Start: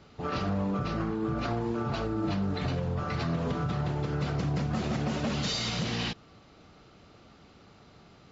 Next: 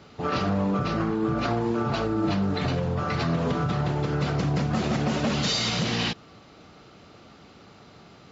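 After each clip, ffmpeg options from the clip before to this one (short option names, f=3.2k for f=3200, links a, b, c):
-af "highpass=f=100:p=1,volume=6dB"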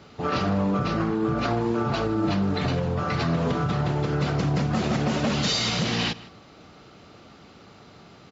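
-filter_complex "[0:a]asplit=2[a][b];[b]adelay=157.4,volume=-19dB,highshelf=f=4k:g=-3.54[c];[a][c]amix=inputs=2:normalize=0,volume=1dB"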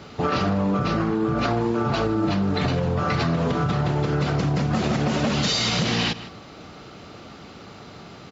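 -af "acompressor=threshold=-26dB:ratio=6,volume=7dB"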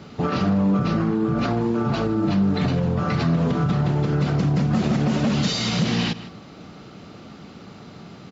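-af "equalizer=f=190:w=1:g=7.5,volume=-3dB"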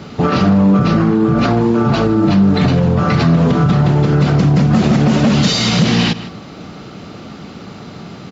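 -af "acontrast=78,volume=2.5dB"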